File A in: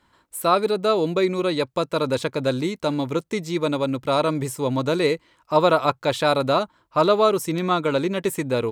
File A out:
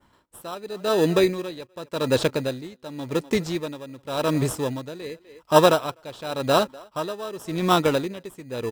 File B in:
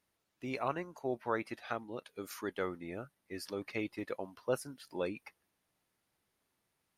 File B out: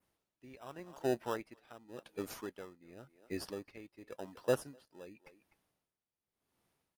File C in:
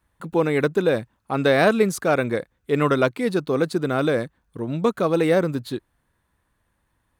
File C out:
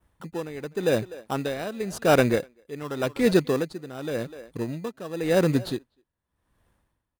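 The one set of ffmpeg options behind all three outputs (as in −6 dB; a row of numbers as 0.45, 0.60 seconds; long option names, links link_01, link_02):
-filter_complex "[0:a]adynamicequalizer=threshold=0.00891:dfrequency=4400:dqfactor=1.1:tfrequency=4400:tqfactor=1.1:attack=5:release=100:ratio=0.375:range=2.5:mode=boostabove:tftype=bell,asplit=2[link_01][link_02];[link_02]adelay=250,highpass=300,lowpass=3400,asoftclip=type=hard:threshold=-13dB,volume=-22dB[link_03];[link_01][link_03]amix=inputs=2:normalize=0,asplit=2[link_04][link_05];[link_05]acrusher=samples=20:mix=1:aa=0.000001,volume=-5dB[link_06];[link_04][link_06]amix=inputs=2:normalize=0,aeval=exprs='val(0)*pow(10,-19*(0.5-0.5*cos(2*PI*0.9*n/s))/20)':channel_layout=same"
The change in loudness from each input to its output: −1.5, −1.0, −4.5 LU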